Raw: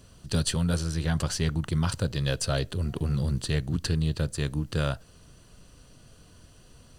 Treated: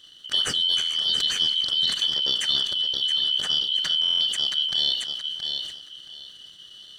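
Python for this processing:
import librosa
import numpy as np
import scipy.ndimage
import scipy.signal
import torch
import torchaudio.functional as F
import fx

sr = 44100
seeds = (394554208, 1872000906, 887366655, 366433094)

p1 = fx.band_shuffle(x, sr, order='3412')
p2 = fx.graphic_eq_15(p1, sr, hz=(100, 1000, 4000, 10000), db=(-3, -6, 9, -6))
p3 = p2 + fx.echo_feedback(p2, sr, ms=673, feedback_pct=28, wet_db=-9, dry=0)
p4 = fx.rev_schroeder(p3, sr, rt60_s=0.46, comb_ms=26, drr_db=17.0)
p5 = fx.level_steps(p4, sr, step_db=16)
p6 = p4 + (p5 * librosa.db_to_amplitude(1.5))
p7 = fx.peak_eq(p6, sr, hz=150.0, db=5.0, octaves=0.67)
p8 = fx.buffer_glitch(p7, sr, at_s=(4.02,), block=1024, repeats=7)
p9 = fx.sustainer(p8, sr, db_per_s=58.0)
y = p9 * librosa.db_to_amplitude(-4.5)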